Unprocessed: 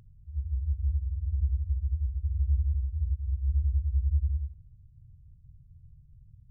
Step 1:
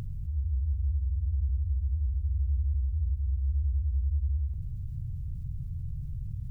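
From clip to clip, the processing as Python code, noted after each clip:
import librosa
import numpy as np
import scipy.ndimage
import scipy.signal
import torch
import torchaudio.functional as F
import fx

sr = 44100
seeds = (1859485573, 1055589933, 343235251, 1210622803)

y = fx.env_flatten(x, sr, amount_pct=70)
y = y * 10.0 ** (-4.0 / 20.0)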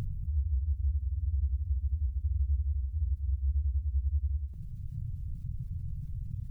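y = fx.dereverb_blind(x, sr, rt60_s=1.5)
y = y * 10.0 ** (2.0 / 20.0)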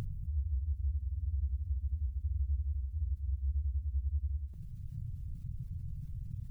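y = fx.low_shelf(x, sr, hz=230.0, db=-4.5)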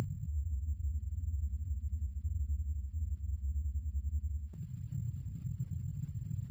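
y = scipy.signal.sosfilt(scipy.signal.butter(2, 130.0, 'highpass', fs=sr, output='sos'), x)
y = np.repeat(scipy.signal.resample_poly(y, 1, 6), 6)[:len(y)]
y = y * 10.0 ** (8.5 / 20.0)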